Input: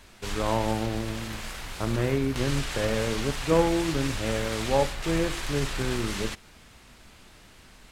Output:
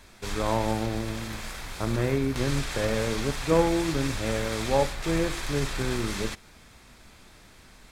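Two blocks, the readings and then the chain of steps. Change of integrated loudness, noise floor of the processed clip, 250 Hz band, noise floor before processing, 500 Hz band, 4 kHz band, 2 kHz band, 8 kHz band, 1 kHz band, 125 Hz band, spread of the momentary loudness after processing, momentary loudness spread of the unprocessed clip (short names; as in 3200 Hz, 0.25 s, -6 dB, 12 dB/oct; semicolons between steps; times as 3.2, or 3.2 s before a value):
0.0 dB, -53 dBFS, 0.0 dB, -53 dBFS, 0.0 dB, -1.0 dB, 0.0 dB, 0.0 dB, 0.0 dB, 0.0 dB, 10 LU, 10 LU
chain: notch 2900 Hz, Q 11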